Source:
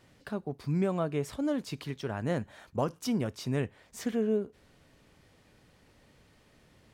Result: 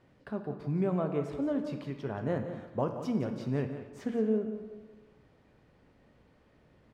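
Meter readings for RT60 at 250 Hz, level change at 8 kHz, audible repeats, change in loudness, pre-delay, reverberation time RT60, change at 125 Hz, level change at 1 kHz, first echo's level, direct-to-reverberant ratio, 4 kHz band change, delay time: 1.3 s, under -10 dB, 1, -0.5 dB, 9 ms, 1.3 s, -1.0 dB, -1.0 dB, -11.5 dB, 5.0 dB, -10.0 dB, 176 ms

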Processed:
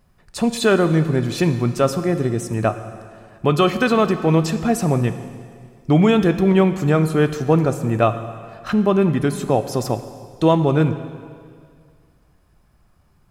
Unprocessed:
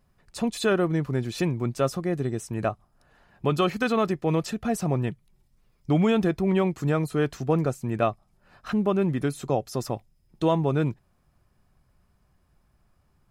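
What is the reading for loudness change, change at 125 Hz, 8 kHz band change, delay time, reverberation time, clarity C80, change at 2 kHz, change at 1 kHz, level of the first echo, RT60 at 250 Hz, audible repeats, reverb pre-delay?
+7.5 dB, +8.0 dB, +7.5 dB, no echo, 2.1 s, 12.0 dB, +7.5 dB, +7.5 dB, no echo, 2.1 s, no echo, 7 ms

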